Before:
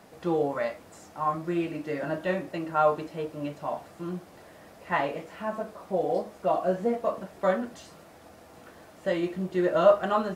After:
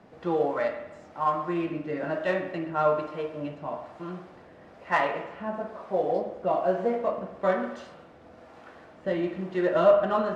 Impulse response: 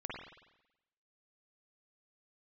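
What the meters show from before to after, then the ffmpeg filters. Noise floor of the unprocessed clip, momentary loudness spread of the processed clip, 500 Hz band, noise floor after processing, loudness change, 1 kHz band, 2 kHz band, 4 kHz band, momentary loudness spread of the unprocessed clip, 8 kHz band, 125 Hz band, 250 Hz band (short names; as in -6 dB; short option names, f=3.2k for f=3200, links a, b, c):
-52 dBFS, 13 LU, +1.0 dB, -51 dBFS, +1.0 dB, +0.5 dB, +2.0 dB, -1.0 dB, 12 LU, n/a, -1.5 dB, -0.5 dB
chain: -filter_complex "[0:a]acrossover=split=420[a][b];[a]aeval=exprs='val(0)*(1-0.5/2+0.5/2*cos(2*PI*1.1*n/s))':c=same[c];[b]aeval=exprs='val(0)*(1-0.5/2-0.5/2*cos(2*PI*1.1*n/s))':c=same[d];[c][d]amix=inputs=2:normalize=0,adynamicsmooth=sensitivity=3.5:basefreq=3.8k,asplit=2[e][f];[1:a]atrim=start_sample=2205,lowshelf=f=240:g=-10.5[g];[f][g]afir=irnorm=-1:irlink=0,volume=-1.5dB[h];[e][h]amix=inputs=2:normalize=0"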